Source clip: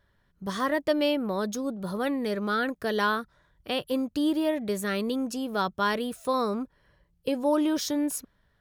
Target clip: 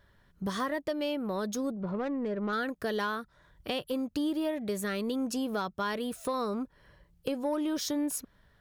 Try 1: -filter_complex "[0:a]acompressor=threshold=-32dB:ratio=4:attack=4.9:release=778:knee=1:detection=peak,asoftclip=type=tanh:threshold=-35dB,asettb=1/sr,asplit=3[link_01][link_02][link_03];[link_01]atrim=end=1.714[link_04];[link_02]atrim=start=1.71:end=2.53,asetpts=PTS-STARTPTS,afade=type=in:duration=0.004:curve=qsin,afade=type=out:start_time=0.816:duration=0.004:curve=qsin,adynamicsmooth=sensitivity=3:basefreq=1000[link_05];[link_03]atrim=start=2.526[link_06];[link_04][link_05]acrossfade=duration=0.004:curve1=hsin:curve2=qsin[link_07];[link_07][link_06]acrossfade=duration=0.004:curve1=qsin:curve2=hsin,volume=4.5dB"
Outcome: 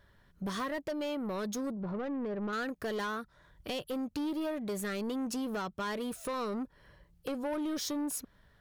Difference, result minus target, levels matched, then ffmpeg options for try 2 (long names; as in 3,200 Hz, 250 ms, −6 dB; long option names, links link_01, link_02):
soft clipping: distortion +15 dB
-filter_complex "[0:a]acompressor=threshold=-32dB:ratio=4:attack=4.9:release=778:knee=1:detection=peak,asoftclip=type=tanh:threshold=-24dB,asettb=1/sr,asplit=3[link_01][link_02][link_03];[link_01]atrim=end=1.714[link_04];[link_02]atrim=start=1.71:end=2.53,asetpts=PTS-STARTPTS,afade=type=in:duration=0.004:curve=qsin,afade=type=out:start_time=0.816:duration=0.004:curve=qsin,adynamicsmooth=sensitivity=3:basefreq=1000[link_05];[link_03]atrim=start=2.526[link_06];[link_04][link_05]acrossfade=duration=0.004:curve1=hsin:curve2=qsin[link_07];[link_07][link_06]acrossfade=duration=0.004:curve1=qsin:curve2=hsin,volume=4.5dB"